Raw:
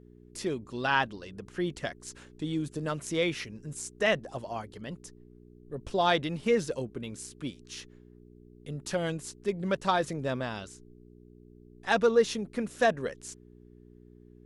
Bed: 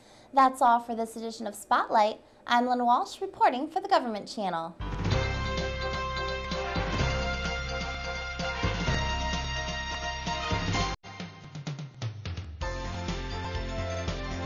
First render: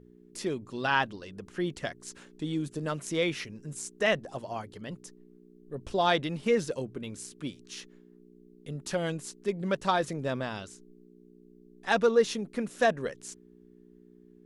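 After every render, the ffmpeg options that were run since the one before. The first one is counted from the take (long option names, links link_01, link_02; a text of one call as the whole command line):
ffmpeg -i in.wav -af "bandreject=frequency=60:width_type=h:width=4,bandreject=frequency=120:width_type=h:width=4" out.wav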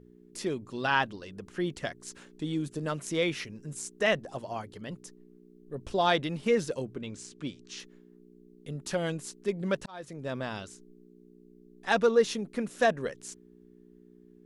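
ffmpeg -i in.wav -filter_complex "[0:a]asettb=1/sr,asplit=3[link_01][link_02][link_03];[link_01]atrim=end=6.954[link_04];[link_02]atrim=start=6.95:end=7.8,asetpts=PTS-STARTPTS,afade=type=in:duration=0.004:curve=qsin,afade=type=out:start_time=0.846:duration=0.004:curve=qsin,lowpass=frequency=7900:width=0.5412,lowpass=frequency=7900:width=1.3066[link_05];[link_03]atrim=start=7.796[link_06];[link_04][link_05]acrossfade=duration=0.004:curve1=hsin:curve2=qsin[link_07];[link_07][link_06]acrossfade=duration=0.004:curve1=qsin:curve2=hsin,asplit=2[link_08][link_09];[link_08]atrim=end=9.86,asetpts=PTS-STARTPTS,afade=type=out:start_time=9.856:duration=0.004:curve=hsin[link_10];[link_09]atrim=start=9.86,asetpts=PTS-STARTPTS,afade=type=in:duration=0.66[link_11];[link_10][link_11]concat=n=2:v=0:a=1" out.wav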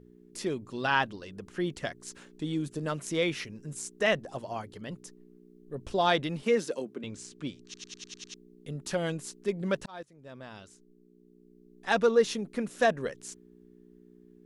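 ffmpeg -i in.wav -filter_complex "[0:a]asettb=1/sr,asplit=3[link_01][link_02][link_03];[link_01]atrim=end=6.434[link_04];[link_02]atrim=start=6.43:end=7.04,asetpts=PTS-STARTPTS,afade=type=in:duration=0.004:curve=qsin,afade=type=out:start_time=0.606:duration=0.004:curve=qsin,highpass=frequency=200:width=0.5412,highpass=frequency=200:width=1.3066[link_05];[link_03]atrim=start=7.036[link_06];[link_04][link_05]acrossfade=duration=0.004:curve1=hsin:curve2=qsin[link_07];[link_07][link_06]acrossfade=duration=0.004:curve1=qsin:curve2=hsin,asplit=9[link_08][link_09][link_10][link_11][link_12][link_13][link_14][link_15][link_16];[link_08]atrim=end=7.742[link_17];[link_09]atrim=start=7.638:end=7.742[link_18];[link_10]atrim=start=7.638:end=7.742[link_19];[link_11]atrim=start=7.638:end=7.742[link_20];[link_12]atrim=start=7.638:end=7.742[link_21];[link_13]atrim=start=7.638:end=7.742[link_22];[link_14]atrim=start=7.638:end=7.742[link_23];[link_15]atrim=start=8.338:end=10.03,asetpts=PTS-STARTPTS,afade=type=out:start_time=1.688:duration=0.004:curve=hsin:silence=0.133352[link_24];[link_16]atrim=start=10.03,asetpts=PTS-STARTPTS,afade=type=in:duration=2.04:silence=0.133352[link_25];[link_17][link_18]acrossfade=duration=0.004:curve1=hsin:curve2=hsin[link_26];[link_26][link_19]acrossfade=duration=0.004:curve1=hsin:curve2=hsin[link_27];[link_27][link_20]acrossfade=duration=0.004:curve1=hsin:curve2=hsin[link_28];[link_28][link_21]acrossfade=duration=0.004:curve1=hsin:curve2=hsin[link_29];[link_29][link_22]acrossfade=duration=0.004:curve1=hsin:curve2=hsin[link_30];[link_30][link_23]acrossfade=duration=0.004:curve1=hsin:curve2=hsin[link_31];[link_24][link_25]concat=n=2:v=0:a=1[link_32];[link_31][link_32]acrossfade=duration=0.004:curve1=hsin:curve2=hsin" out.wav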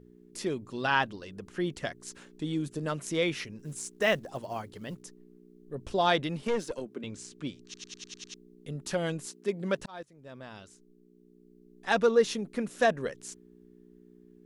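ffmpeg -i in.wav -filter_complex "[0:a]asettb=1/sr,asplit=3[link_01][link_02][link_03];[link_01]atrim=end=3.594[link_04];[link_02]atrim=start=3.59:end=5.02,asetpts=PTS-STARTPTS,afade=type=in:duration=0.004:curve=qsin,afade=type=out:start_time=1.426:duration=0.004:curve=qsin,acrusher=bits=7:mode=log:mix=0:aa=0.000001[link_05];[link_03]atrim=start=5.016[link_06];[link_04][link_05]acrossfade=duration=0.004:curve1=hsin:curve2=qsin[link_07];[link_07][link_06]acrossfade=duration=0.004:curve1=qsin:curve2=hsin,asettb=1/sr,asplit=3[link_08][link_09][link_10];[link_08]atrim=end=6.474[link_11];[link_09]atrim=start=6.47:end=6.91,asetpts=PTS-STARTPTS,afade=type=in:duration=0.004:curve=qsin,afade=type=out:start_time=0.436:duration=0.004:curve=qsin,aeval=exprs='(tanh(14.1*val(0)+0.55)-tanh(0.55))/14.1':channel_layout=same[link_12];[link_10]atrim=start=6.906[link_13];[link_11][link_12]acrossfade=duration=0.004:curve1=hsin:curve2=qsin[link_14];[link_14][link_13]acrossfade=duration=0.004:curve1=qsin:curve2=hsin,asettb=1/sr,asplit=3[link_15][link_16][link_17];[link_15]atrim=end=9.264[link_18];[link_16]atrim=start=9.26:end=9.79,asetpts=PTS-STARTPTS,afade=type=in:duration=0.004:curve=qsin,afade=type=out:start_time=0.526:duration=0.004:curve=qsin,highpass=160[link_19];[link_17]atrim=start=9.786[link_20];[link_18][link_19]acrossfade=duration=0.004:curve1=hsin:curve2=qsin[link_21];[link_21][link_20]acrossfade=duration=0.004:curve1=qsin:curve2=hsin" out.wav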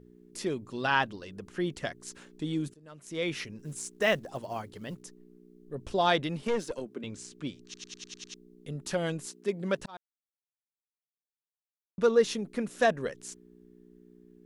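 ffmpeg -i in.wav -filter_complex "[0:a]asplit=4[link_01][link_02][link_03][link_04];[link_01]atrim=end=2.74,asetpts=PTS-STARTPTS,afade=type=out:start_time=2.736:duration=0.004:curve=hsin:silence=0.0707946[link_05];[link_02]atrim=start=2.74:end=9.97,asetpts=PTS-STARTPTS,afade=type=in:duration=0.62:curve=qua:silence=0.0707946,afade=type=out:start_time=7.226:duration=0.004:curve=hsin[link_06];[link_03]atrim=start=9.97:end=11.98,asetpts=PTS-STARTPTS,volume=0[link_07];[link_04]atrim=start=11.98,asetpts=PTS-STARTPTS,afade=type=in:duration=0.004:curve=hsin[link_08];[link_05][link_06][link_07][link_08]concat=n=4:v=0:a=1" out.wav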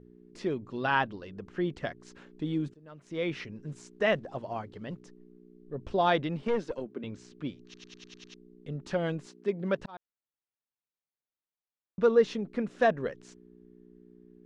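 ffmpeg -i in.wav -af "lowpass=6500,aemphasis=mode=reproduction:type=75fm" out.wav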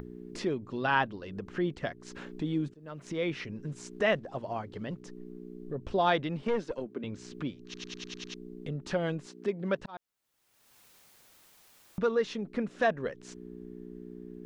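ffmpeg -i in.wav -filter_complex "[0:a]acrossover=split=850[link_01][link_02];[link_01]alimiter=limit=-21dB:level=0:latency=1:release=351[link_03];[link_03][link_02]amix=inputs=2:normalize=0,acompressor=mode=upward:threshold=-32dB:ratio=2.5" out.wav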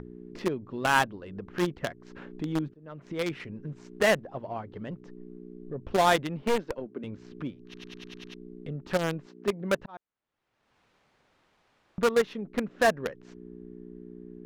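ffmpeg -i in.wav -filter_complex "[0:a]asplit=2[link_01][link_02];[link_02]acrusher=bits=3:mix=0:aa=0.000001,volume=-5dB[link_03];[link_01][link_03]amix=inputs=2:normalize=0,adynamicsmooth=sensitivity=5:basefreq=2600" out.wav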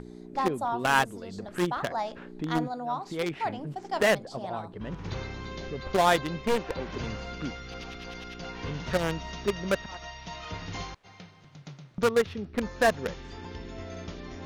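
ffmpeg -i in.wav -i bed.wav -filter_complex "[1:a]volume=-8.5dB[link_01];[0:a][link_01]amix=inputs=2:normalize=0" out.wav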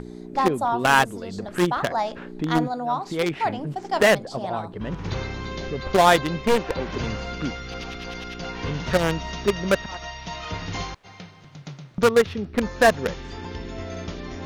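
ffmpeg -i in.wav -af "volume=6.5dB,alimiter=limit=-3dB:level=0:latency=1" out.wav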